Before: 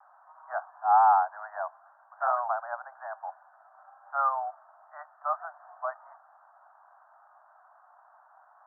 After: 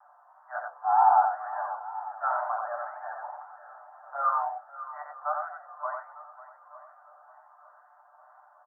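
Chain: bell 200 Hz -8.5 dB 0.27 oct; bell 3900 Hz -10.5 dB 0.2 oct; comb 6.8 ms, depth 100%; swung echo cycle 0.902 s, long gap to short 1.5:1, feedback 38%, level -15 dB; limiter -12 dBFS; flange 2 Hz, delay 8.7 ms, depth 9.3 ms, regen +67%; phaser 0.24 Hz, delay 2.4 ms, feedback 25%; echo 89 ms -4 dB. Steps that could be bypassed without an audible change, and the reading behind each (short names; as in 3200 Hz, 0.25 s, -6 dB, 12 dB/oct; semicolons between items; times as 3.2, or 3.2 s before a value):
bell 200 Hz: input band starts at 510 Hz; bell 3900 Hz: input band ends at 1800 Hz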